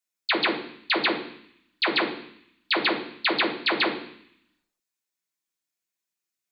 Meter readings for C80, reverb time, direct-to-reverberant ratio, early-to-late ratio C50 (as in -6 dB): 12.0 dB, 0.65 s, -2.5 dB, 9.0 dB